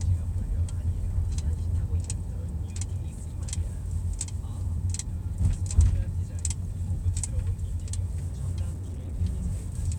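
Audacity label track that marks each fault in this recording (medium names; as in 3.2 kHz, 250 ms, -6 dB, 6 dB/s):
8.720000	9.150000	clipped -31 dBFS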